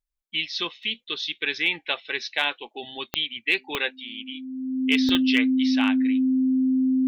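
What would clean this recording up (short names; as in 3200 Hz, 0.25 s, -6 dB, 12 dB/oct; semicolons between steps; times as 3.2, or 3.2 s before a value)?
clip repair -9.5 dBFS; de-click; notch 260 Hz, Q 30; interpolate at 0.83/5.09, 2.6 ms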